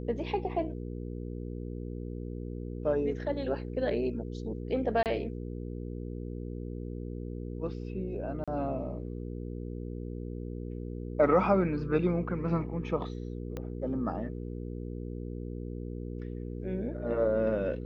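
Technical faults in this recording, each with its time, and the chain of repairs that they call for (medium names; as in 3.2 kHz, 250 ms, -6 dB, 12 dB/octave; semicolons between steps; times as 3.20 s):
hum 60 Hz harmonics 8 -38 dBFS
5.03–5.06 s: dropout 28 ms
8.44–8.48 s: dropout 36 ms
13.57 s: pop -24 dBFS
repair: de-click; de-hum 60 Hz, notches 8; interpolate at 5.03 s, 28 ms; interpolate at 8.44 s, 36 ms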